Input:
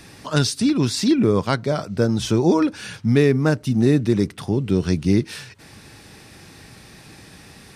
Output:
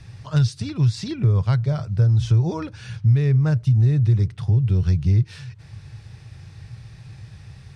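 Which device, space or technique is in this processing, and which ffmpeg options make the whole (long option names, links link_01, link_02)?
jukebox: -af "lowpass=6900,lowshelf=frequency=170:width_type=q:width=3:gain=12.5,acompressor=threshold=-7dB:ratio=3,volume=-7.5dB"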